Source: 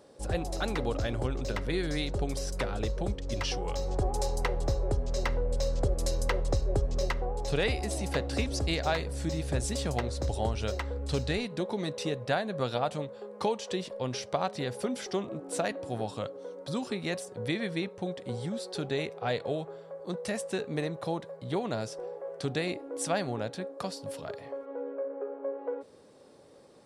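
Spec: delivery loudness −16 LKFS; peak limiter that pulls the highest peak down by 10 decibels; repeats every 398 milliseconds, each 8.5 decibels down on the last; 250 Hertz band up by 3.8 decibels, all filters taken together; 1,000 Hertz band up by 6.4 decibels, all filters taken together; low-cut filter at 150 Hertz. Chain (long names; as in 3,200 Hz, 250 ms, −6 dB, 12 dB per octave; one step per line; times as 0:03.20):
high-pass filter 150 Hz
parametric band 250 Hz +5.5 dB
parametric band 1,000 Hz +8.5 dB
brickwall limiter −19.5 dBFS
repeating echo 398 ms, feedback 38%, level −8.5 dB
level +16 dB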